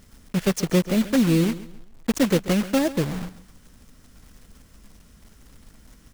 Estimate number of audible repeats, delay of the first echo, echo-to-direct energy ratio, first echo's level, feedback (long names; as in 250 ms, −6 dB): 2, 135 ms, −15.5 dB, −16.0 dB, 30%